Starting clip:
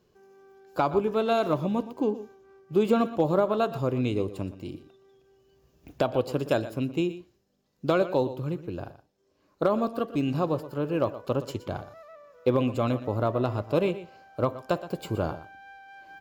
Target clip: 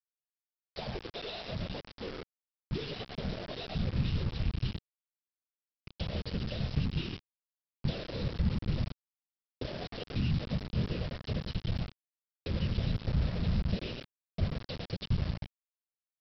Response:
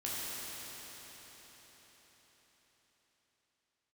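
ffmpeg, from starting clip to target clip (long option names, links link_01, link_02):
-filter_complex "[0:a]firequalizer=gain_entry='entry(140,0);entry(200,-20);entry(530,-4);entry(1300,-22);entry(3000,8)':delay=0.05:min_phase=1,asplit=2[link_01][link_02];[link_02]adelay=91,lowpass=frequency=2400:poles=1,volume=-10dB,asplit=2[link_03][link_04];[link_04]adelay=91,lowpass=frequency=2400:poles=1,volume=0.17[link_05];[link_03][link_05]amix=inputs=2:normalize=0[link_06];[link_01][link_06]amix=inputs=2:normalize=0,acontrast=63,alimiter=limit=-17.5dB:level=0:latency=1:release=84,acompressor=threshold=-31dB:ratio=16,afftfilt=real='hypot(re,im)*cos(2*PI*random(0))':imag='hypot(re,im)*sin(2*PI*random(1))':win_size=512:overlap=0.75,aresample=11025,acrusher=bits=6:mix=0:aa=0.000001,aresample=44100,asubboost=boost=4.5:cutoff=250"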